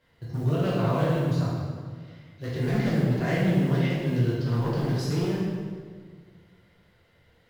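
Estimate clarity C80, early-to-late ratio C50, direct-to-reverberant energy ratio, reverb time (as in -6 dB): 1.0 dB, -1.5 dB, -8.5 dB, 1.7 s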